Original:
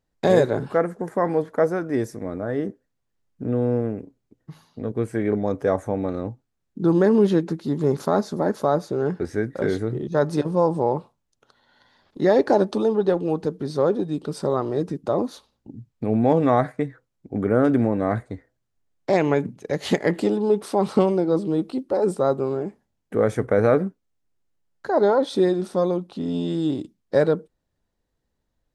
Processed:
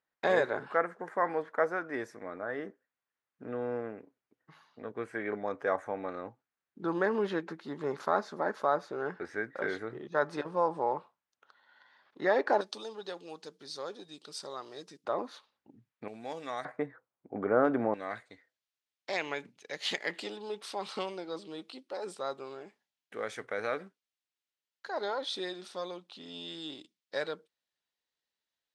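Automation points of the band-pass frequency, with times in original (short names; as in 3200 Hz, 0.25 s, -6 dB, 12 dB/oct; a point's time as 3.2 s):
band-pass, Q 1.1
1600 Hz
from 12.61 s 4800 Hz
from 15.05 s 1800 Hz
from 16.08 s 5500 Hz
from 16.65 s 1000 Hz
from 17.94 s 3400 Hz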